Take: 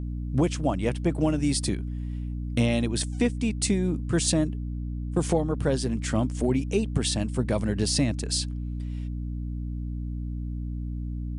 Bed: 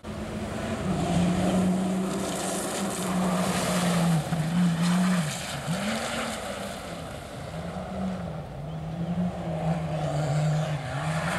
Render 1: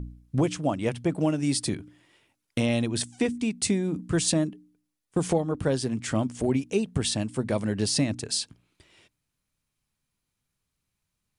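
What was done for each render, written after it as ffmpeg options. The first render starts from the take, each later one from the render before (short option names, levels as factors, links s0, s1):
-af "bandreject=f=60:t=h:w=4,bandreject=f=120:t=h:w=4,bandreject=f=180:t=h:w=4,bandreject=f=240:t=h:w=4,bandreject=f=300:t=h:w=4"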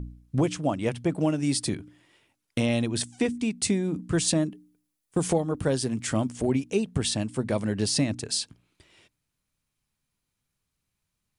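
-filter_complex "[0:a]asettb=1/sr,asplit=3[s0][s1][s2];[s0]atrim=end=4.514[s3];[s1]atrim=start=4.51:end=6.32,asetpts=PTS-STARTPTS,afade=t=in:d=0.004:c=qsin,afade=t=out:st=1.806:d=0.004:c=qsin,highshelf=f=8900:g=8.5[s4];[s2]atrim=start=6.316[s5];[s3][s4]acrossfade=d=0.004:c1=hsin:c2=qsin[s6];[s6][s5]acrossfade=d=0.004:c1=qsin:c2=hsin"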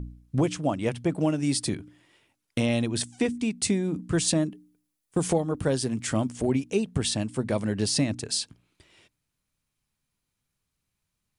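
-af anull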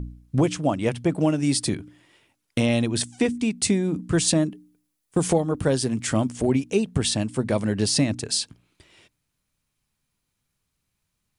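-af "volume=1.5"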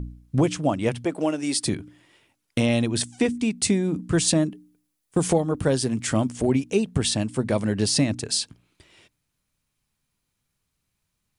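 -filter_complex "[0:a]asettb=1/sr,asplit=3[s0][s1][s2];[s0]atrim=end=1.054[s3];[s1]atrim=start=1.05:end=1.64,asetpts=PTS-STARTPTS,afade=t=in:d=0.004:c=qsin,afade=t=out:st=0.586:d=0.004:c=qsin,highpass=320[s4];[s2]atrim=start=1.636[s5];[s3][s4]acrossfade=d=0.004:c1=hsin:c2=qsin[s6];[s6][s5]acrossfade=d=0.004:c1=qsin:c2=hsin"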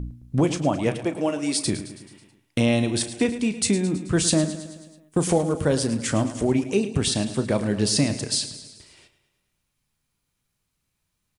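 -filter_complex "[0:a]asplit=2[s0][s1];[s1]adelay=34,volume=0.224[s2];[s0][s2]amix=inputs=2:normalize=0,aecho=1:1:108|216|324|432|540|648:0.224|0.132|0.0779|0.046|0.0271|0.016"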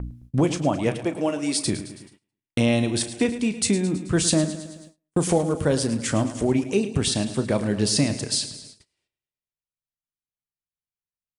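-af "agate=range=0.0447:threshold=0.00562:ratio=16:detection=peak"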